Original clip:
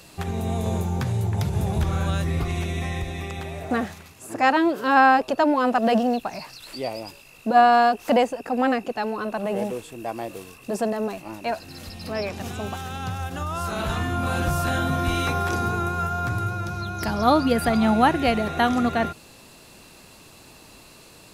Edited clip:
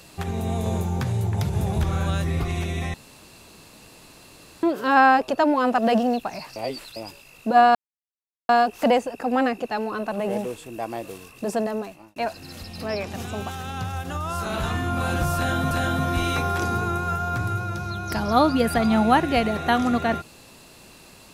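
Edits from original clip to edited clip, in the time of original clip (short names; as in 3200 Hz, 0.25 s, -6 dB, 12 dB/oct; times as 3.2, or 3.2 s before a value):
2.94–4.63 room tone
6.56–6.96 reverse
7.75 insert silence 0.74 s
10.94–11.42 fade out
14.62–14.97 loop, 2 plays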